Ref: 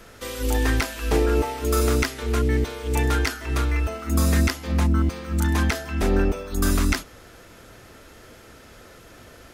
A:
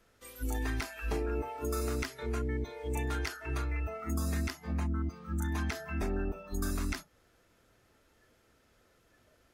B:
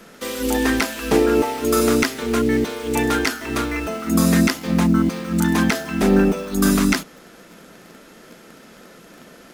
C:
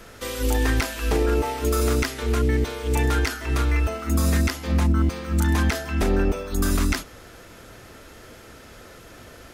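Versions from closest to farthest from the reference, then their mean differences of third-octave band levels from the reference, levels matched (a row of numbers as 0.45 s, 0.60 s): C, B, A; 1.5 dB, 3.5 dB, 5.0 dB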